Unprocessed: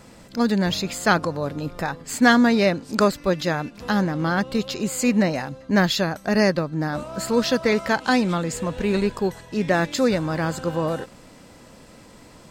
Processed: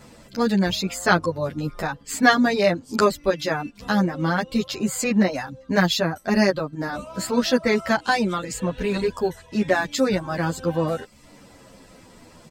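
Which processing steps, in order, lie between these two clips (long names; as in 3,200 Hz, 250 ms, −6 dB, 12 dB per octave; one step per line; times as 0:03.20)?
reverb reduction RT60 0.57 s
barber-pole flanger 10 ms −0.64 Hz
level +3.5 dB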